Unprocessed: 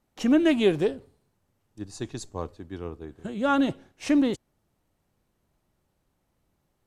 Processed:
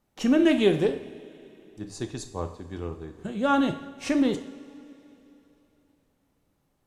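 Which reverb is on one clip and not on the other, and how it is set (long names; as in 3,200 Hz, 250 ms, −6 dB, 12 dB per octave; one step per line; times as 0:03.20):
coupled-rooms reverb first 0.54 s, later 3.3 s, from −17 dB, DRR 6.5 dB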